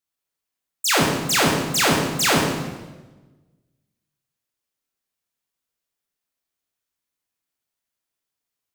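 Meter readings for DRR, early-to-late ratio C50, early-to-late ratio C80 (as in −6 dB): −1.5 dB, 2.0 dB, 4.5 dB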